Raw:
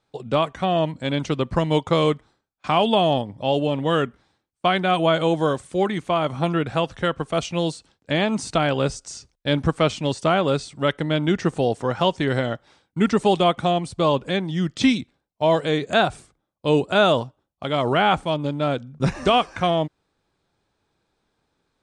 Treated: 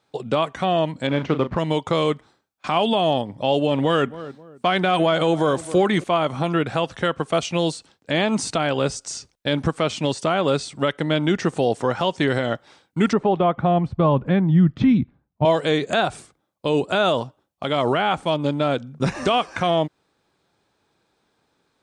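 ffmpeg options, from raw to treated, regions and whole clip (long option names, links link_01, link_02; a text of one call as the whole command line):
ffmpeg -i in.wav -filter_complex "[0:a]asettb=1/sr,asplit=3[link_01][link_02][link_03];[link_01]atrim=end=1.074[link_04];[link_02]atrim=start=1.07:end=1.58,asetpts=PTS-STARTPTS,afade=type=in:duration=0.004:curve=qsin,afade=type=out:start_time=0.506:duration=0.004:curve=qsin,acrusher=bits=4:mode=log:mix=0:aa=0.000001,lowpass=2100,asplit=2[link_05][link_06];[link_06]adelay=37,volume=-11dB[link_07];[link_05][link_07]amix=inputs=2:normalize=0,atrim=end_sample=22491[link_08];[link_03]atrim=start=1.576[link_09];[link_04][link_08]acrossfade=duration=0.004:curve1=hsin:curve2=qsin[link_10];[link_10][link_09]acrossfade=duration=0.004:curve1=qsin:curve2=hsin,asettb=1/sr,asplit=3[link_11][link_12][link_13];[link_11]atrim=end=3.714[link_14];[link_12]atrim=start=3.71:end=6.04,asetpts=PTS-STARTPTS,afade=type=in:duration=0.004:curve=qsin,afade=type=out:start_time=2.326:duration=0.004:curve=qsin,acontrast=29,asplit=2[link_15][link_16];[link_16]adelay=264,lowpass=frequency=910:poles=1,volume=-21dB,asplit=2[link_17][link_18];[link_18]adelay=264,lowpass=frequency=910:poles=1,volume=0.33[link_19];[link_15][link_17][link_19]amix=inputs=3:normalize=0,atrim=end_sample=102753[link_20];[link_13]atrim=start=6.036[link_21];[link_14][link_20]acrossfade=duration=0.004:curve1=hsin:curve2=qsin[link_22];[link_22][link_21]acrossfade=duration=0.004:curve1=qsin:curve2=hsin,asettb=1/sr,asplit=3[link_23][link_24][link_25];[link_23]atrim=end=13.134[link_26];[link_24]atrim=start=13.13:end=15.45,asetpts=PTS-STARTPTS,afade=type=in:duration=0.004:curve=qsin,afade=type=out:start_time=2.316:duration=0.004:curve=qsin,lowpass=1500,asubboost=boost=11:cutoff=180[link_27];[link_25]atrim=start=15.446[link_28];[link_26][link_27]acrossfade=duration=0.004:curve1=hsin:curve2=qsin[link_29];[link_29][link_28]acrossfade=duration=0.004:curve1=qsin:curve2=hsin,highpass=frequency=150:poles=1,alimiter=limit=-14dB:level=0:latency=1:release=167,volume=5dB" out.wav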